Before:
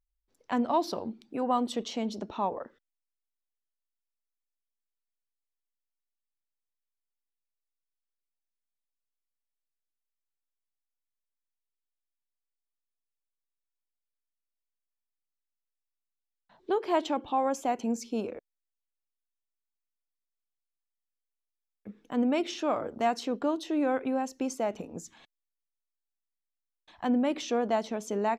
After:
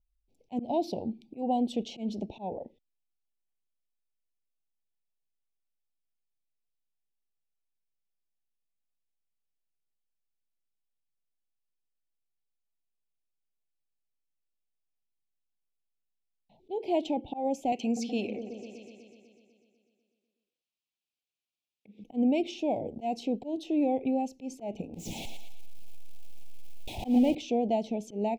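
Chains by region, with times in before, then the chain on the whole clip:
17.72–22.04 weighting filter D + repeats that get brighter 0.124 s, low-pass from 400 Hz, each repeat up 1 oct, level -6 dB
24.94–27.35 zero-crossing step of -31.5 dBFS + thinning echo 0.114 s, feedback 43%, high-pass 340 Hz, level -7 dB
whole clip: elliptic band-stop 800–2400 Hz, stop band 60 dB; tone controls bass +6 dB, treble -8 dB; auto swell 0.128 s

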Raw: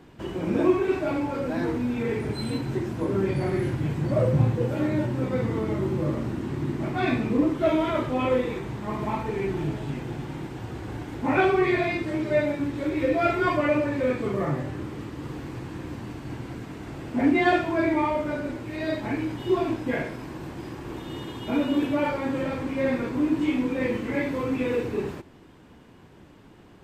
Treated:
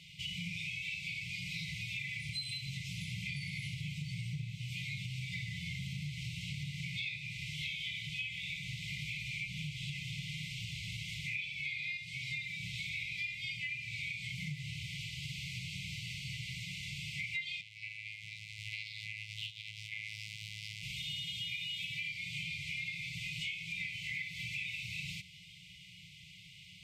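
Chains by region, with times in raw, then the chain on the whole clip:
17.61–20.83 compressor 12:1, threshold -32 dBFS + robotiser 107 Hz + Doppler distortion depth 0.73 ms
whole clip: FFT band-reject 190–2000 Hz; weighting filter D; compressor 10:1, threshold -37 dBFS

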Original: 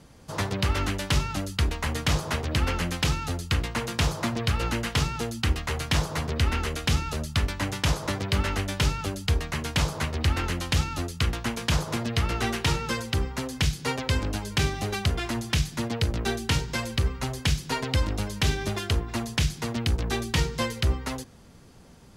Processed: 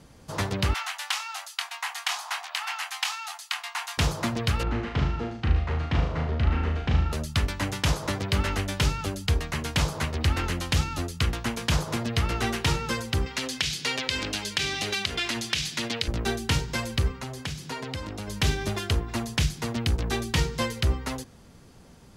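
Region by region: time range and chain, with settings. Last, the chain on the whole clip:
0.74–3.98 Chebyshev high-pass 720 Hz, order 6 + doubler 24 ms -7.5 dB
4.63–7.13 tape spacing loss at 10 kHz 34 dB + flutter echo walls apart 6.4 m, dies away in 0.57 s
13.26–16.08 weighting filter D + compressor 3:1, threshold -24 dBFS
17.11–18.28 HPF 100 Hz + high shelf 10000 Hz -4.5 dB + compressor 2:1, threshold -34 dBFS
whole clip: dry

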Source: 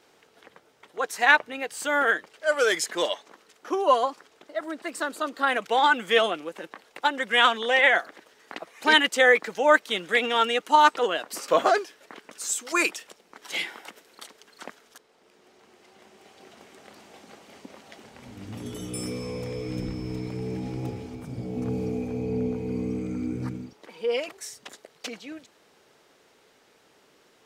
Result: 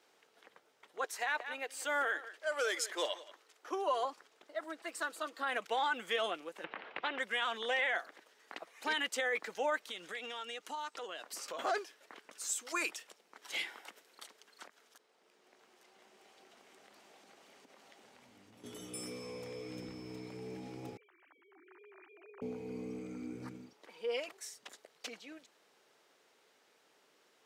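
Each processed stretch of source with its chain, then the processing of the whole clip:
1.04–4.05 HPF 280 Hz 24 dB/oct + echo 0.178 s -18.5 dB
4.64–5.39 low shelf 220 Hz -11.5 dB + comb 6.1 ms, depth 41% + overloaded stage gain 18 dB
6.64–7.19 LPF 2700 Hz 24 dB/oct + spectral compressor 2:1
9.78–11.59 dynamic EQ 6000 Hz, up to +6 dB, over -40 dBFS, Q 0.81 + compressor 4:1, threshold -32 dBFS
14.67–18.64 compressor 3:1, threshold -48 dBFS + echo 0.855 s -8.5 dB
20.97–22.42 sine-wave speech + HPF 1200 Hz + air absorption 300 m
whole clip: HPF 410 Hz 6 dB/oct; limiter -16.5 dBFS; gain -8 dB

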